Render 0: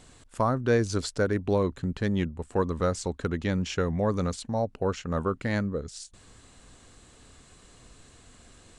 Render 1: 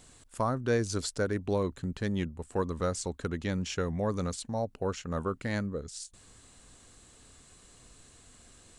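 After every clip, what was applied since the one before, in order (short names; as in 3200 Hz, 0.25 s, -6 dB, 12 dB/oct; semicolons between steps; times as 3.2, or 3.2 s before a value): high shelf 7000 Hz +10 dB; gain -4.5 dB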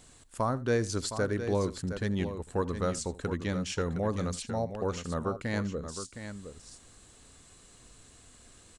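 tapped delay 79/714 ms -18.5/-9.5 dB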